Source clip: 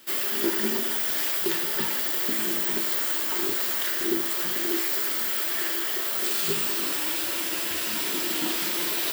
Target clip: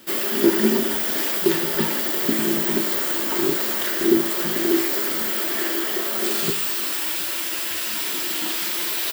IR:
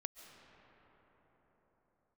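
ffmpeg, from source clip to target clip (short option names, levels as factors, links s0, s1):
-af "asetnsamples=n=441:p=0,asendcmd='6.5 equalizer g -5.5',equalizer=f=190:w=0.31:g=9.5,aecho=1:1:722:0.0891,volume=1.33"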